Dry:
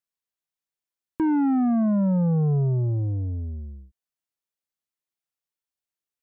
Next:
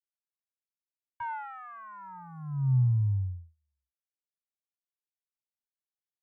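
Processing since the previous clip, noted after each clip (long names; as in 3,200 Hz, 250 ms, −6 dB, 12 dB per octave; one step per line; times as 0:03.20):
noise gate −28 dBFS, range −45 dB
Chebyshev band-stop filter 130–890 Hz, order 5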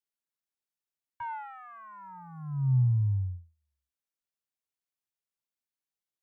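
dynamic equaliser 1,400 Hz, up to −4 dB, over −53 dBFS, Q 1.9
every ending faded ahead of time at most 180 dB per second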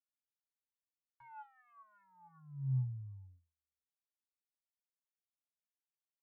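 stiff-string resonator 130 Hz, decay 0.21 s, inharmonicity 0.03
level −7.5 dB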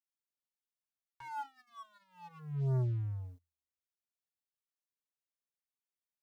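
leveller curve on the samples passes 3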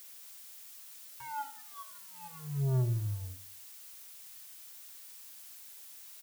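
background noise blue −53 dBFS
repeating echo 85 ms, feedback 38%, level −14 dB
level +2 dB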